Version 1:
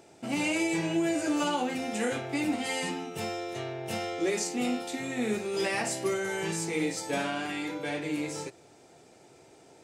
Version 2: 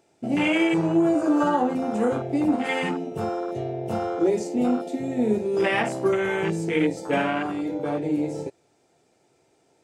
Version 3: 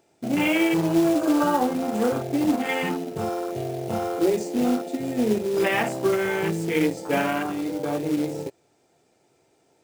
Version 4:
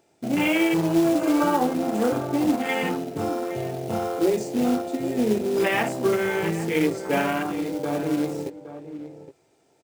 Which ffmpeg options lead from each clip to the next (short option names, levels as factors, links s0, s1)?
-af "afwtdn=0.0224,volume=2.51"
-af "acrusher=bits=4:mode=log:mix=0:aa=0.000001"
-filter_complex "[0:a]asplit=2[s0][s1];[s1]adelay=816.3,volume=0.251,highshelf=f=4000:g=-18.4[s2];[s0][s2]amix=inputs=2:normalize=0"